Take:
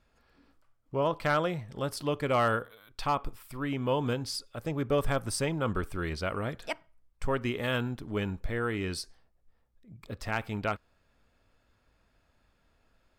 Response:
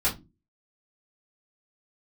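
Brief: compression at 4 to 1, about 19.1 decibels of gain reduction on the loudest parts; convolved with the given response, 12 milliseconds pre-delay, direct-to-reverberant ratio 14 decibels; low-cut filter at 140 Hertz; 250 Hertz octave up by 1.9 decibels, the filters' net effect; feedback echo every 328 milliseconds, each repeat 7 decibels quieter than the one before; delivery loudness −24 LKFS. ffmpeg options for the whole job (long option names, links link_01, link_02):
-filter_complex "[0:a]highpass=140,equalizer=frequency=250:width_type=o:gain=3,acompressor=threshold=-46dB:ratio=4,aecho=1:1:328|656|984|1312|1640:0.447|0.201|0.0905|0.0407|0.0183,asplit=2[link_01][link_02];[1:a]atrim=start_sample=2205,adelay=12[link_03];[link_02][link_03]afir=irnorm=-1:irlink=0,volume=-24.5dB[link_04];[link_01][link_04]amix=inputs=2:normalize=0,volume=23dB"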